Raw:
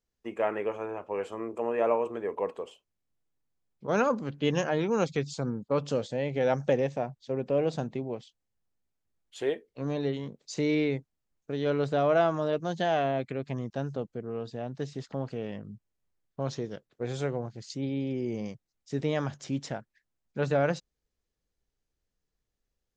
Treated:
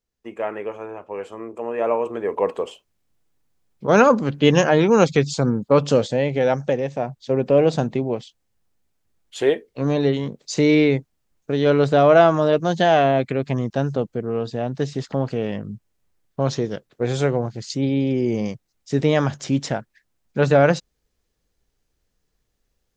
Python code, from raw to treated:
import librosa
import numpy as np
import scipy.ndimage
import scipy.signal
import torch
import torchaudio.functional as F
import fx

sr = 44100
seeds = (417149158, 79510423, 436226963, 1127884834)

y = fx.gain(x, sr, db=fx.line((1.62, 2.0), (2.62, 12.0), (6.05, 12.0), (6.81, 3.0), (7.24, 11.0)))